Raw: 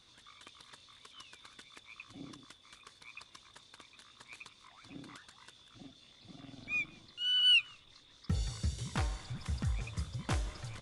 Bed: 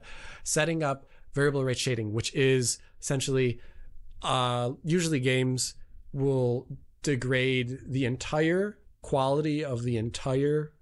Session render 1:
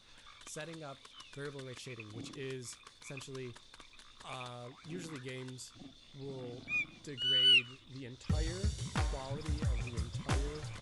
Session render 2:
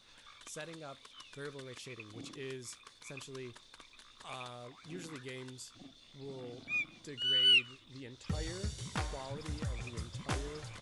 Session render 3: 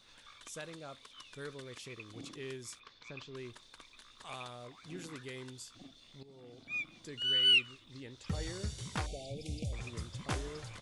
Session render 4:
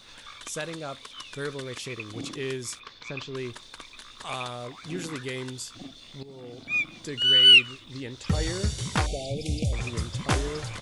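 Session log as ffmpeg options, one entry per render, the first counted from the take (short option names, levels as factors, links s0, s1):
-filter_complex "[1:a]volume=0.112[s0];[0:a][s0]amix=inputs=2:normalize=0"
-af "lowshelf=f=140:g=-6.5"
-filter_complex "[0:a]asplit=3[s0][s1][s2];[s0]afade=t=out:st=2.79:d=0.02[s3];[s1]lowpass=f=5000:w=0.5412,lowpass=f=5000:w=1.3066,afade=t=in:st=2.79:d=0.02,afade=t=out:st=3.35:d=0.02[s4];[s2]afade=t=in:st=3.35:d=0.02[s5];[s3][s4][s5]amix=inputs=3:normalize=0,asettb=1/sr,asplit=3[s6][s7][s8];[s6]atrim=end=9.064[s9];[s7]atrim=start=9.06:end=9.73,asetpts=PTS-STARTPTS,afade=t=in:d=0.004:c=qsin,afade=t=out:st=0.666:d=0.004:c=qsin,asuperstop=centerf=1300:order=20:qfactor=0.89[s10];[s8]atrim=start=9.726[s11];[s9][s10]acrossfade=d=0.004:c1=hsin:c2=qsin[s12];[s12][s11]acrossfade=d=0.004:c1=qsin:c2=hsin,asplit=2[s13][s14];[s13]atrim=end=6.23,asetpts=PTS-STARTPTS,afade=t=out:st=6.226:d=0.004:c=hsin:silence=0.188365[s15];[s14]atrim=start=6.23,asetpts=PTS-STARTPTS,afade=t=in:d=0.84:silence=0.188365[s16];[s15][s16]concat=n=2:v=0:a=1"
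-af "volume=3.76"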